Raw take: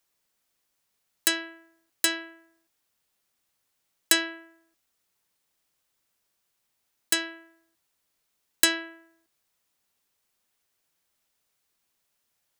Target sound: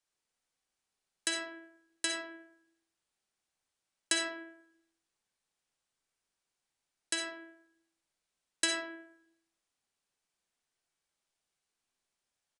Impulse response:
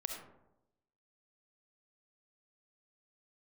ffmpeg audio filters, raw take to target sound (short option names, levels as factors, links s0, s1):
-filter_complex "[1:a]atrim=start_sample=2205,asetrate=52920,aresample=44100[s0];[0:a][s0]afir=irnorm=-1:irlink=0,aresample=22050,aresample=44100,volume=0.531"